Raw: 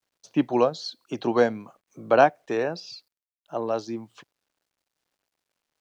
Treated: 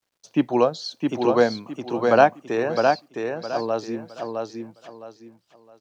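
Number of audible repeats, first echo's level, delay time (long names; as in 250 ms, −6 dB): 3, −4.0 dB, 662 ms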